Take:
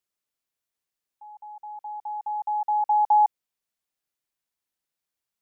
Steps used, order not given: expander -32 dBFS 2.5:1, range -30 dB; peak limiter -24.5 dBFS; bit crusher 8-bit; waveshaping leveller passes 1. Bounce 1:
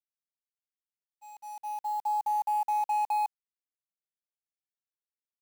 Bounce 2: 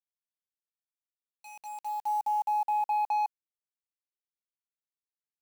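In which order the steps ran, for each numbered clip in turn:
waveshaping leveller > peak limiter > bit crusher > expander; expander > waveshaping leveller > bit crusher > peak limiter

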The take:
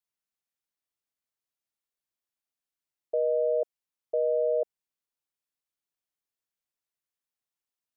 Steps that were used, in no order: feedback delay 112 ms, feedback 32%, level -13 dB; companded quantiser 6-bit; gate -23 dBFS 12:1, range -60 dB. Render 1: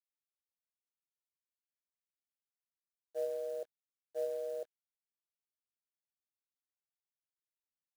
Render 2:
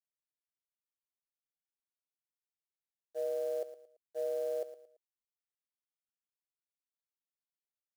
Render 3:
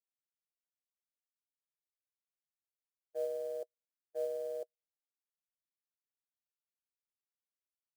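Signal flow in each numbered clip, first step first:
feedback delay > gate > companded quantiser; gate > companded quantiser > feedback delay; companded quantiser > feedback delay > gate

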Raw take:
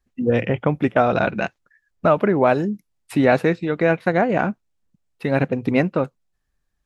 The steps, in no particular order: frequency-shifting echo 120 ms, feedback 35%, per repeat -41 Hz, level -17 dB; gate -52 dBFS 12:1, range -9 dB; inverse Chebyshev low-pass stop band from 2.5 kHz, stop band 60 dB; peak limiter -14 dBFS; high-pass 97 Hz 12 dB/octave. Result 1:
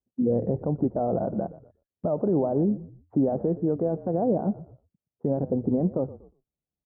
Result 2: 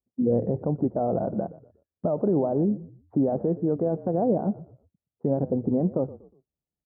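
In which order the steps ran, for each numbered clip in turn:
high-pass > peak limiter > frequency-shifting echo > inverse Chebyshev low-pass > gate; peak limiter > inverse Chebyshev low-pass > gate > frequency-shifting echo > high-pass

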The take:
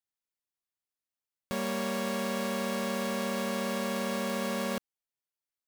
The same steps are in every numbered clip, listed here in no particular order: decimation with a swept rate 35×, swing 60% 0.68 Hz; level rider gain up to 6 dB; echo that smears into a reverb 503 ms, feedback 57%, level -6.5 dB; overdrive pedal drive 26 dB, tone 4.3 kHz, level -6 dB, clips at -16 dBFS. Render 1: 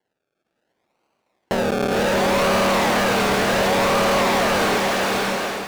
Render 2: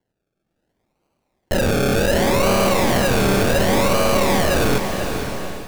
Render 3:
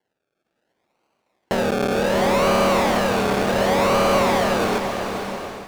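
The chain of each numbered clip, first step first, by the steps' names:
decimation with a swept rate > echo that smears into a reverb > overdrive pedal > level rider; overdrive pedal > decimation with a swept rate > echo that smears into a reverb > level rider; decimation with a swept rate > overdrive pedal > echo that smears into a reverb > level rider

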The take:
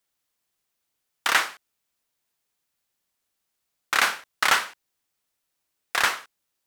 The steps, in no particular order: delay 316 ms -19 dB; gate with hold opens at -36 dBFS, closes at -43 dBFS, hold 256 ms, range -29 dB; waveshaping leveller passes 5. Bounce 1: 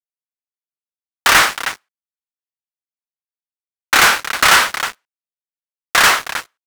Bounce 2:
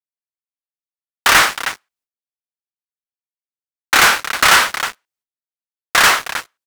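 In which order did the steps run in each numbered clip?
gate with hold > delay > waveshaping leveller; delay > waveshaping leveller > gate with hold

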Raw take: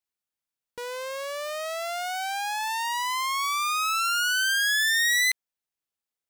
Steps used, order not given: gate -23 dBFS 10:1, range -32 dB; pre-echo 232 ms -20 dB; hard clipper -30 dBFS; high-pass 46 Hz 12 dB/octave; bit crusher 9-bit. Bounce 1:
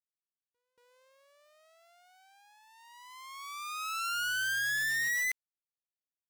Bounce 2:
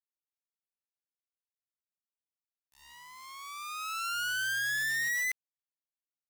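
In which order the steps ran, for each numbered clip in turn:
high-pass > bit crusher > pre-echo > gate > hard clipper; gate > pre-echo > hard clipper > high-pass > bit crusher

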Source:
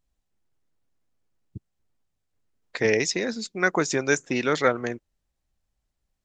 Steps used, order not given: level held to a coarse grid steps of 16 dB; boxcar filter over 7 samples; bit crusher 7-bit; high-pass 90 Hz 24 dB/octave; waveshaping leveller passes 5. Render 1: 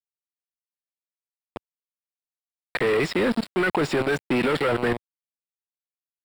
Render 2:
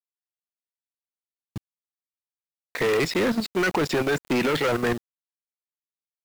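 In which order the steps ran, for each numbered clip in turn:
level held to a coarse grid > bit crusher > high-pass > waveshaping leveller > boxcar filter; boxcar filter > level held to a coarse grid > high-pass > waveshaping leveller > bit crusher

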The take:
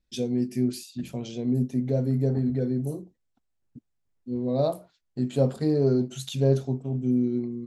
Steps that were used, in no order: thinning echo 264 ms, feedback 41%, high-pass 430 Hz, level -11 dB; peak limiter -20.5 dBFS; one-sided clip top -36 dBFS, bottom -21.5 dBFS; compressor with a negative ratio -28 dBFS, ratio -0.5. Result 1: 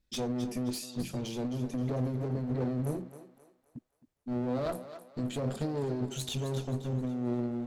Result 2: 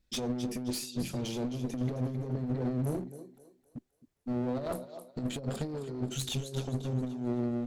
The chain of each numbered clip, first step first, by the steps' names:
peak limiter > compressor with a negative ratio > one-sided clip > thinning echo; compressor with a negative ratio > peak limiter > thinning echo > one-sided clip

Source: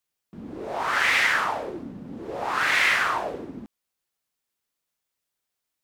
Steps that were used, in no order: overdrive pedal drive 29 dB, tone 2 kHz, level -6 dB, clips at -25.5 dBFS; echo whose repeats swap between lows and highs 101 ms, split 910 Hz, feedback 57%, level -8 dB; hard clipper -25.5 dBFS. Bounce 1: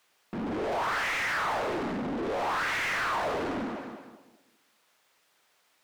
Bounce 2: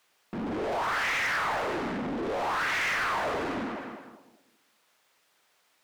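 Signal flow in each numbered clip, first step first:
hard clipper > echo whose repeats swap between lows and highs > overdrive pedal; echo whose repeats swap between lows and highs > overdrive pedal > hard clipper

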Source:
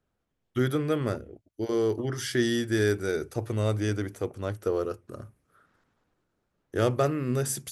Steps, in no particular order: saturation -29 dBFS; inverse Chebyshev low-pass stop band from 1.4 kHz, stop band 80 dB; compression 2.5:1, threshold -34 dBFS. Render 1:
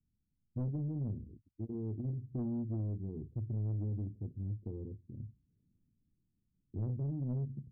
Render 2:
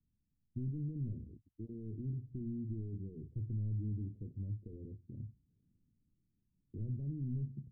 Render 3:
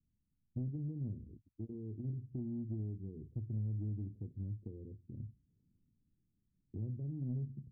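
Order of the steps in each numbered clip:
inverse Chebyshev low-pass > saturation > compression; saturation > compression > inverse Chebyshev low-pass; compression > inverse Chebyshev low-pass > saturation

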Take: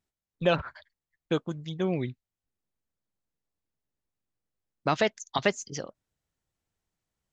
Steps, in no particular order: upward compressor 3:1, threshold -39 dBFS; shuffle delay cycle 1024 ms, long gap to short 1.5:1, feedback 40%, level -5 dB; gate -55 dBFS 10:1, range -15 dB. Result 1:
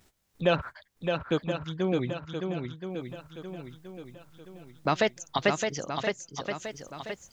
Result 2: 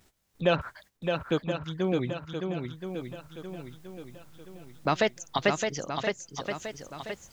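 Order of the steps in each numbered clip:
upward compressor > gate > shuffle delay; upward compressor > shuffle delay > gate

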